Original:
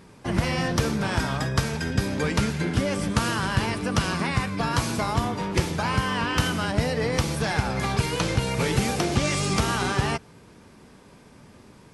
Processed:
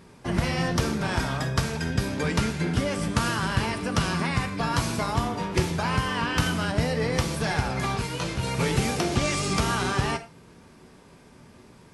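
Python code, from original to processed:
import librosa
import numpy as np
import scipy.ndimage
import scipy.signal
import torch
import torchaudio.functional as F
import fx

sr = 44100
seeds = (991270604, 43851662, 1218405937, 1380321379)

y = fx.rev_gated(x, sr, seeds[0], gate_ms=140, shape='falling', drr_db=8.5)
y = fx.detune_double(y, sr, cents=fx.line((7.96, 22.0), (8.42, 10.0)), at=(7.96, 8.42), fade=0.02)
y = y * librosa.db_to_amplitude(-1.5)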